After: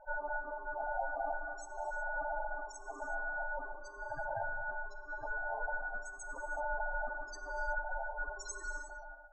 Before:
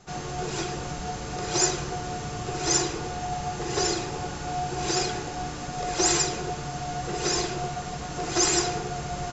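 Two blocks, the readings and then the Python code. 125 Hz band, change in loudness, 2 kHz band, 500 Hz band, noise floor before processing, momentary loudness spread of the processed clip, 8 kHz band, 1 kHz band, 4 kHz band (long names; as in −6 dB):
−24.5 dB, −12.5 dB, −1.0 dB, −11.0 dB, −35 dBFS, 7 LU, can't be measured, −9.0 dB, below −30 dB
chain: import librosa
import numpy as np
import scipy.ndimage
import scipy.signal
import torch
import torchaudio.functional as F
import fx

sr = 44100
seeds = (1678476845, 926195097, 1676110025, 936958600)

y = fx.fade_out_tail(x, sr, length_s=2.43)
y = fx.high_shelf(y, sr, hz=6200.0, db=-5.0)
y = fx.notch(y, sr, hz=4700.0, q=29.0)
y = fx.over_compress(y, sr, threshold_db=-35.0, ratio=-1.0)
y = fx.spec_topn(y, sr, count=4)
y = fx.fixed_phaser(y, sr, hz=910.0, stages=4)
y = y * np.sin(2.0 * np.pi * 740.0 * np.arange(len(y)) / sr)
y = fx.rev_gated(y, sr, seeds[0], gate_ms=390, shape='flat', drr_db=7.5)
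y = F.gain(torch.from_numpy(y), 4.5).numpy()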